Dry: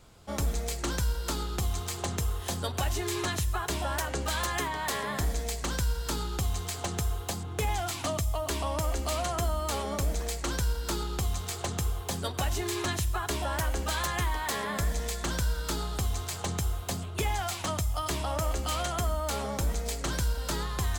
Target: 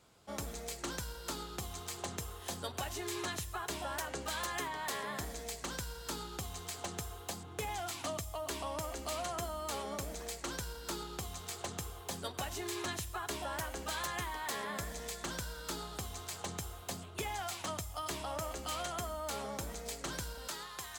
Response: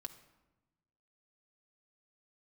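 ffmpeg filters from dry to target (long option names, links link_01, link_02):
-af "asetnsamples=nb_out_samples=441:pad=0,asendcmd='20.48 highpass f 1000',highpass=frequency=190:poles=1,volume=-6.5dB"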